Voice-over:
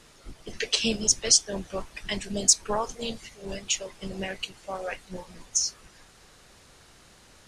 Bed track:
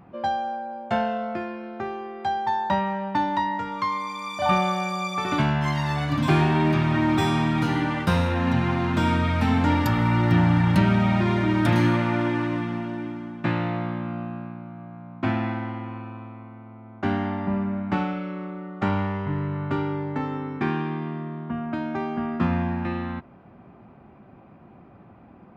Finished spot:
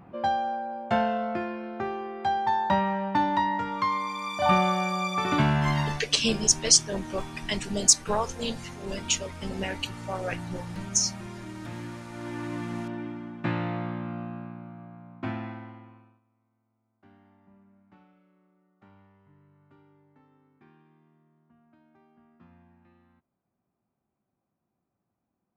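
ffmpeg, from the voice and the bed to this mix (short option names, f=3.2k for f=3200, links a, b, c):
-filter_complex "[0:a]adelay=5400,volume=1dB[a];[1:a]volume=14dB,afade=t=out:st=5.81:d=0.22:silence=0.125893,afade=t=in:st=12.11:d=0.69:silence=0.188365,afade=t=out:st=14.66:d=1.55:silence=0.0354813[b];[a][b]amix=inputs=2:normalize=0"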